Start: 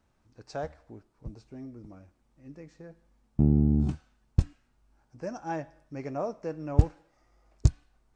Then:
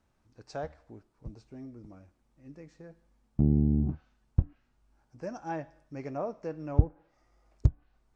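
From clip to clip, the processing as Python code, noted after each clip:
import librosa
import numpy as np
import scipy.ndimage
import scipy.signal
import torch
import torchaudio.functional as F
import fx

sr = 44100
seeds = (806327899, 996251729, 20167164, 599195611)

y = fx.env_lowpass_down(x, sr, base_hz=720.0, full_db=-21.0)
y = y * librosa.db_to_amplitude(-2.0)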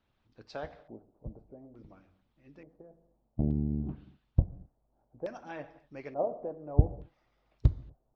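y = fx.rev_gated(x, sr, seeds[0], gate_ms=280, shape='falling', drr_db=8.0)
y = fx.hpss(y, sr, part='harmonic', gain_db=-11)
y = fx.filter_lfo_lowpass(y, sr, shape='square', hz=0.57, low_hz=660.0, high_hz=3500.0, q=2.5)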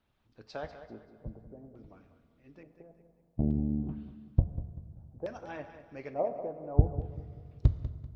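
y = fx.echo_feedback(x, sr, ms=194, feedback_pct=35, wet_db=-12.5)
y = fx.rev_fdn(y, sr, rt60_s=2.2, lf_ratio=1.4, hf_ratio=0.7, size_ms=14.0, drr_db=13.5)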